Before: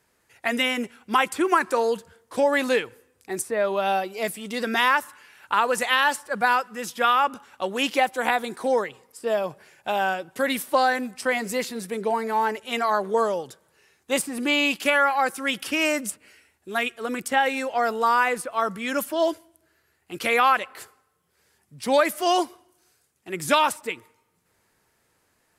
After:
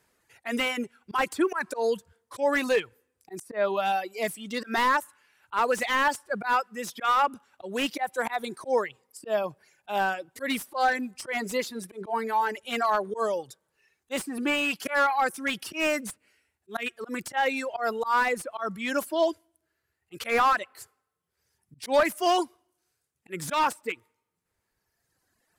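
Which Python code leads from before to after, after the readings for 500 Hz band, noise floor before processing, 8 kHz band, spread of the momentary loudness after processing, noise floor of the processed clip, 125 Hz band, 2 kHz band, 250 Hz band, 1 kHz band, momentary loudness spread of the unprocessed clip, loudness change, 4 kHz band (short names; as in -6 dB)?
-3.5 dB, -69 dBFS, -5.5 dB, 12 LU, -80 dBFS, n/a, -4.5 dB, -3.5 dB, -3.5 dB, 12 LU, -4.0 dB, -6.0 dB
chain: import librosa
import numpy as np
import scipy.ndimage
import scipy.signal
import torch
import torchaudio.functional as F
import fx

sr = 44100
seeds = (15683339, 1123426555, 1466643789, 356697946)

y = fx.auto_swell(x, sr, attack_ms=112.0)
y = fx.dereverb_blind(y, sr, rt60_s=1.9)
y = fx.slew_limit(y, sr, full_power_hz=170.0)
y = y * 10.0 ** (-1.0 / 20.0)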